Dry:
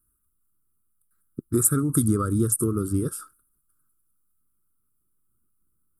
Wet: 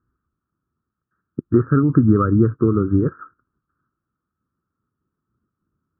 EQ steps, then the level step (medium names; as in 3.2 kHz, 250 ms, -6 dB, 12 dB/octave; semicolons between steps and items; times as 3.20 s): high-pass 72 Hz; brick-wall FIR low-pass 1.9 kHz; +8.0 dB